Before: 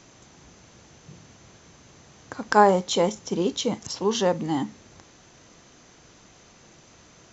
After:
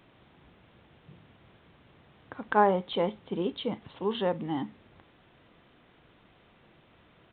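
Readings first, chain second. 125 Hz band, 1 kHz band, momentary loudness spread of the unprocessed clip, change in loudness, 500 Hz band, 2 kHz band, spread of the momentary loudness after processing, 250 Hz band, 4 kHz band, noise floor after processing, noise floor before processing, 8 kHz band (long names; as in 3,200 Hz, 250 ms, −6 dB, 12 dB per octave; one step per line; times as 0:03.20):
−6.0 dB, −6.0 dB, 14 LU, −6.5 dB, −6.0 dB, −6.0 dB, 14 LU, −6.0 dB, −8.5 dB, −61 dBFS, −54 dBFS, can't be measured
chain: downsampling to 8,000 Hz
level −6 dB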